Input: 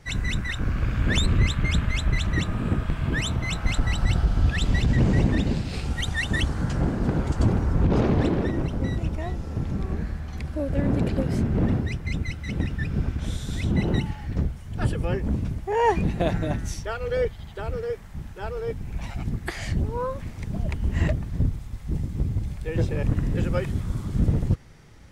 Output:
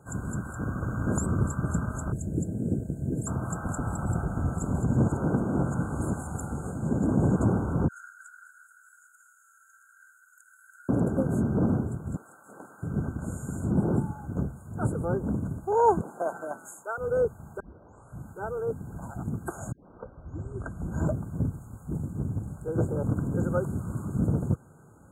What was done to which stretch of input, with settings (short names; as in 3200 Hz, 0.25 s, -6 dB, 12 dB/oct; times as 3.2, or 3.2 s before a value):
2.12–3.27 Chebyshev band-stop 460–2900 Hz
5.08–7.36 reverse
7.88–10.89 Chebyshev high-pass 1400 Hz, order 8
12.16–12.83 HPF 770 Hz
16.01–16.98 HPF 630 Hz
17.6 tape start 0.68 s
19.72 tape start 1.35 s
22.1–22.82 Doppler distortion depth 0.46 ms
whole clip: HPF 120 Hz 12 dB/oct; FFT band-reject 1600–6500 Hz